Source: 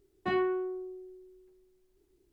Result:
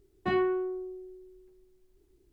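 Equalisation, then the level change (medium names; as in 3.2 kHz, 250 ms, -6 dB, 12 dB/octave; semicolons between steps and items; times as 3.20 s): bass shelf 160 Hz +7 dB; +1.0 dB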